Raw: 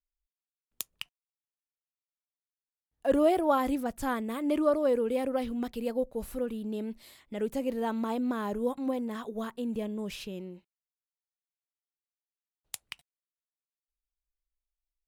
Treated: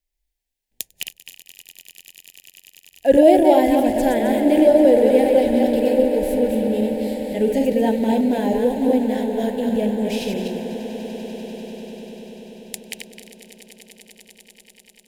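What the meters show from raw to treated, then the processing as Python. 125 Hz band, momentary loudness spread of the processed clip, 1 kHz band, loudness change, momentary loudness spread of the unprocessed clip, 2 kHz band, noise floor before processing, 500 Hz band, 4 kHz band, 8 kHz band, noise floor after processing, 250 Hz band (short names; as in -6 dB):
+13.0 dB, 21 LU, +10.5 dB, +13.0 dB, 17 LU, +10.0 dB, under -85 dBFS, +14.0 dB, +11.5 dB, +10.5 dB, -71 dBFS, +13.5 dB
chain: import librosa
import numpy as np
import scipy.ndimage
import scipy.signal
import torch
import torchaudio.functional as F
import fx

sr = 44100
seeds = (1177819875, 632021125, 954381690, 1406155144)

y = fx.reverse_delay_fb(x, sr, ms=131, feedback_pct=47, wet_db=-3.5)
y = scipy.signal.sosfilt(scipy.signal.cheby1(2, 1.0, [820.0, 1800.0], 'bandstop', fs=sr, output='sos'), y)
y = fx.hpss(y, sr, part='harmonic', gain_db=4)
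y = fx.echo_swell(y, sr, ms=98, loudest=8, wet_db=-17.5)
y = y * librosa.db_to_amplitude(8.0)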